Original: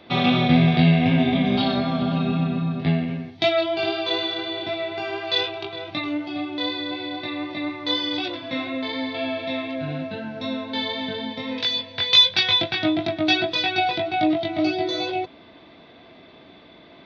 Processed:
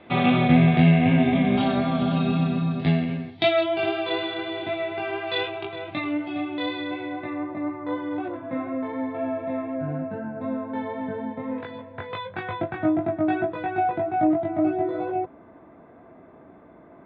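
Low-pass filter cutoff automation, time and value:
low-pass filter 24 dB per octave
0:01.69 2,800 Hz
0:02.41 4,700 Hz
0:03.07 4,700 Hz
0:03.86 2,900 Hz
0:06.80 2,900 Hz
0:07.54 1,500 Hz

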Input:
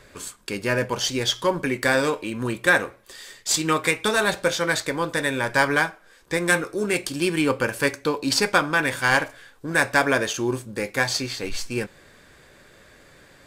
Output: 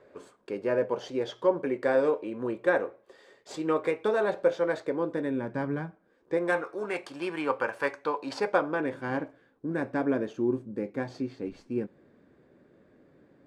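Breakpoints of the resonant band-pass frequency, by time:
resonant band-pass, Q 1.4
0:04.76 490 Hz
0:05.88 160 Hz
0:06.66 870 Hz
0:08.20 870 Hz
0:09.10 270 Hz

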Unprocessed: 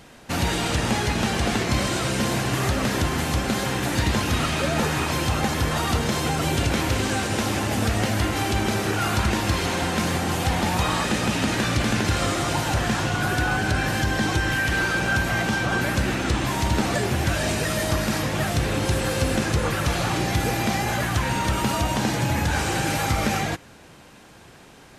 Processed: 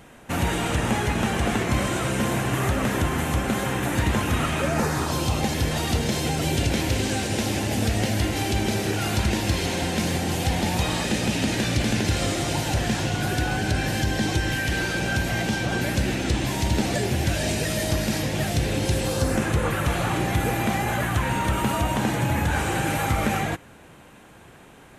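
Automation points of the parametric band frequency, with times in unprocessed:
parametric band −10 dB 0.75 octaves
0:04.59 4,700 Hz
0:05.53 1,200 Hz
0:19.00 1,200 Hz
0:19.45 5,000 Hz

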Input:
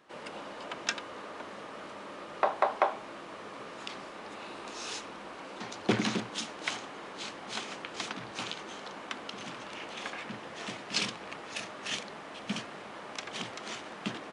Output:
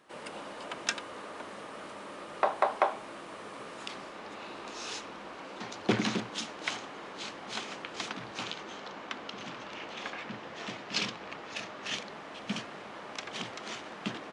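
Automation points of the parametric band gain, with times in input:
parametric band 9,300 Hz 0.53 octaves
0:03.73 +7 dB
0:04.28 −4.5 dB
0:08.22 −4.5 dB
0:08.83 −13.5 dB
0:11.64 −13.5 dB
0:12.35 −5.5 dB

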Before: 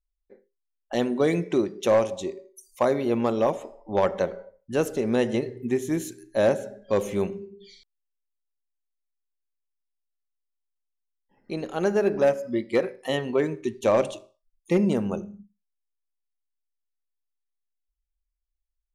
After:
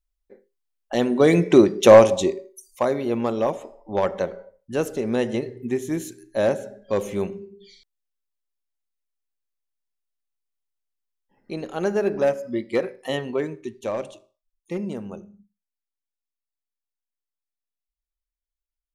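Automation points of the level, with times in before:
0:00.99 +3 dB
0:01.61 +10.5 dB
0:02.18 +10.5 dB
0:02.85 0 dB
0:13.18 0 dB
0:13.98 −7.5 dB

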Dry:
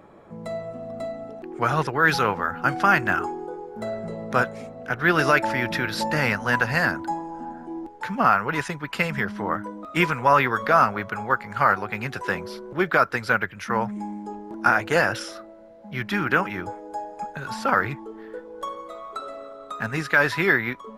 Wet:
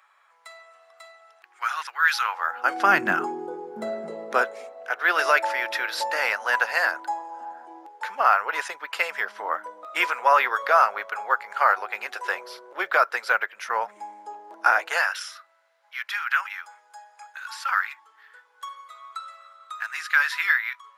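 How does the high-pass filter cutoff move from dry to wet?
high-pass filter 24 dB per octave
0:02.17 1,200 Hz
0:02.74 390 Hz
0:03.06 180 Hz
0:03.76 180 Hz
0:04.79 540 Hz
0:14.79 540 Hz
0:15.20 1,200 Hz

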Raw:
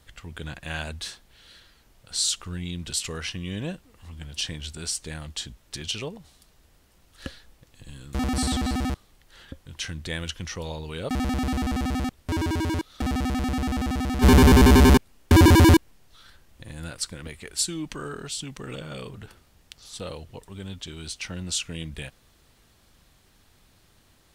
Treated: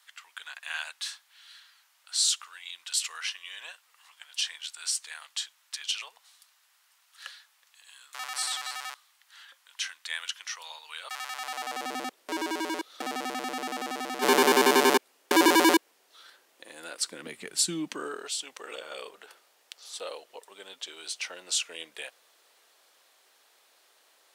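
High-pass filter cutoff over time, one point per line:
high-pass filter 24 dB per octave
0:11.31 990 Hz
0:11.93 370 Hz
0:16.90 370 Hz
0:17.62 140 Hz
0:18.33 460 Hz

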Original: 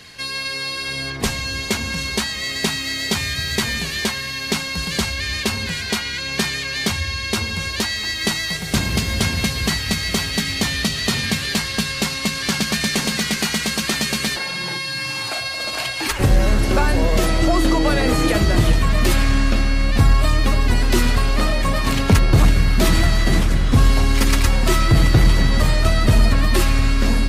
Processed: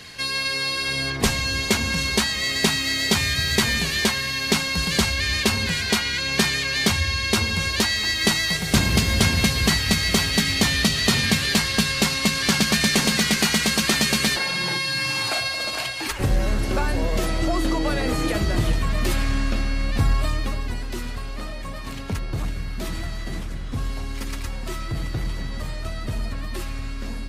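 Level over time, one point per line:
0:15.37 +1 dB
0:16.15 −6 dB
0:20.21 −6 dB
0:20.92 −14 dB

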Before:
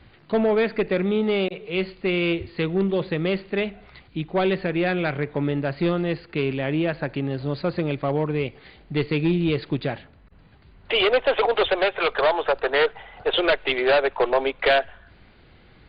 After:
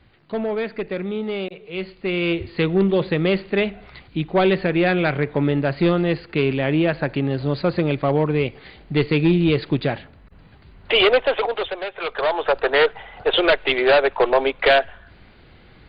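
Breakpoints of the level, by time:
0:01.73 −4 dB
0:02.59 +4.5 dB
0:11.07 +4.5 dB
0:11.82 −8 dB
0:12.56 +3.5 dB

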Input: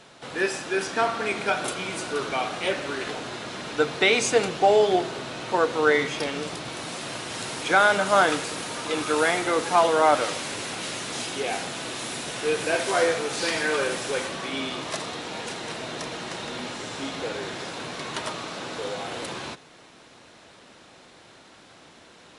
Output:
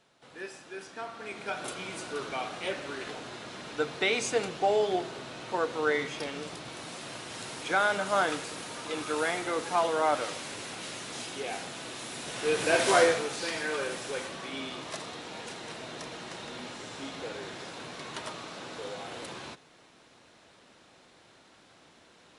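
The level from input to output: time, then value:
0:01.06 −16 dB
0:01.73 −7.5 dB
0:12.12 −7.5 dB
0:12.92 +2 dB
0:13.40 −7.5 dB

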